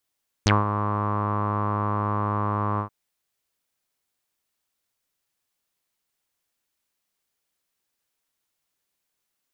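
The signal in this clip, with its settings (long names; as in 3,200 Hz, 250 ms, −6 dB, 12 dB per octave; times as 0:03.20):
subtractive voice saw G#2 12 dB per octave, low-pass 1,100 Hz, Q 8.5, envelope 3 octaves, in 0.06 s, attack 1.4 ms, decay 0.18 s, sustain −9.5 dB, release 0.10 s, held 2.33 s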